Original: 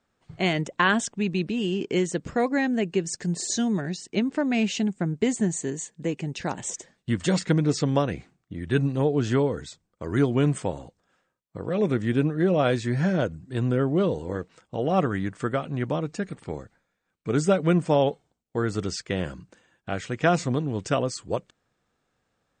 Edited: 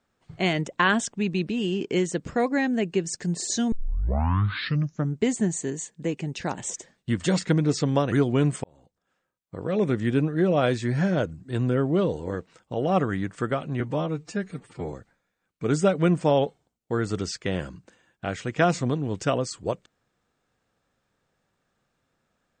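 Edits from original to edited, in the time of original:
3.72 s: tape start 1.50 s
8.12–10.14 s: delete
10.66–11.68 s: fade in
15.82–16.57 s: stretch 1.5×

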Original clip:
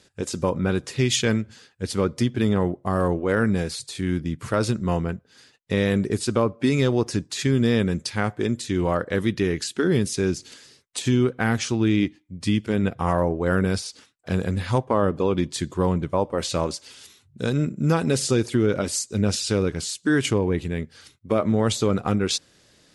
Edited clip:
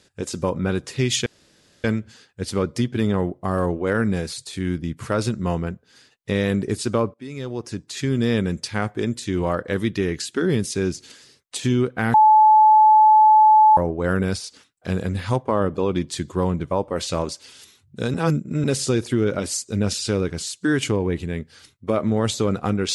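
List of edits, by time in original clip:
1.26 s: insert room tone 0.58 s
6.56–7.76 s: fade in, from -21 dB
11.56–13.19 s: bleep 863 Hz -9 dBFS
17.56–18.06 s: reverse

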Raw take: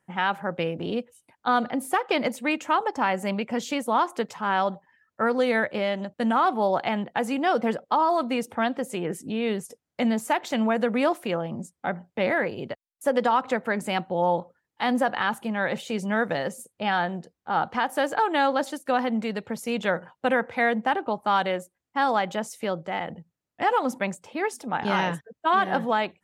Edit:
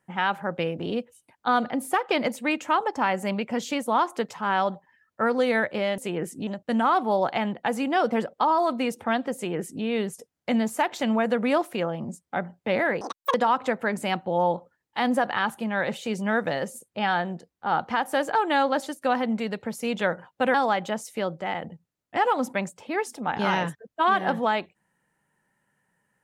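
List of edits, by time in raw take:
8.86–9.35 s: copy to 5.98 s
12.52–13.18 s: speed 199%
20.38–22.00 s: delete

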